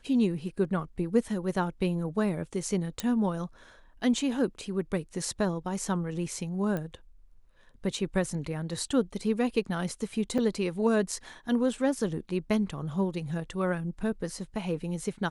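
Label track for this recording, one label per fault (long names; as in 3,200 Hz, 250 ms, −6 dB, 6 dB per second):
3.000000	3.000000	click −14 dBFS
6.770000	6.770000	click −21 dBFS
10.380000	10.380000	drop-out 5 ms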